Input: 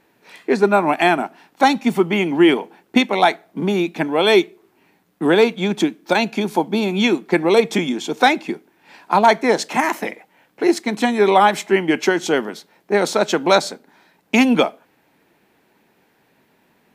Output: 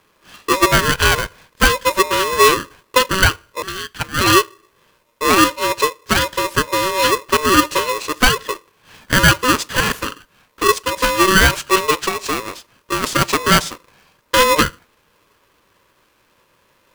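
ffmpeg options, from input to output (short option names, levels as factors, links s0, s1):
-filter_complex "[0:a]asettb=1/sr,asplit=3[s0][s1][s2];[s0]atrim=end=3.624[s3];[s1]atrim=start=3.62:end=4.21,asetpts=PTS-STARTPTS,afade=t=in:d=0.004:c=qsin,afade=t=out:st=0.586:d=0.004:c=qsin,highpass=f=540:w=0.5412,highpass=f=540:w=1.3066[s4];[s2]atrim=start=4.206[s5];[s3][s4]acrossfade=d=0.004:c1=hsin:c2=qsin[s6];[s6][s5]acrossfade=d=0.004:c1=qsin:c2=hsin,asettb=1/sr,asplit=3[s7][s8][s9];[s7]atrim=end=11.934[s10];[s8]atrim=start=11.93:end=13.04,asetpts=PTS-STARTPTS,afade=t=in:d=0.004:c=qsin,afade=t=out:st=1.106:d=0.004:c=qsin,acompressor=threshold=0.126:ratio=5[s11];[s9]atrim=start=13.036[s12];[s10][s11]acrossfade=d=0.004:c1=hsin:c2=qsin[s13];[s13][s12]acrossfade=d=0.004:c1=qsin:c2=hsin,aeval=exprs='val(0)*sgn(sin(2*PI*760*n/s))':c=same,volume=1.12"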